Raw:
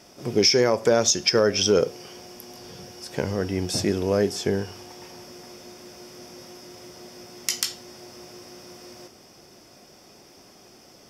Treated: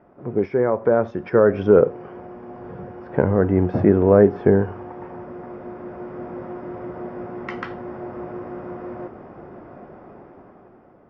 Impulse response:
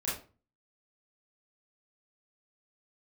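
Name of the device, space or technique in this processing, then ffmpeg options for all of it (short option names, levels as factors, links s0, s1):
action camera in a waterproof case: -af "lowpass=f=1500:w=0.5412,lowpass=f=1500:w=1.3066,dynaudnorm=f=290:g=9:m=4.47" -ar 44100 -c:a aac -b:a 128k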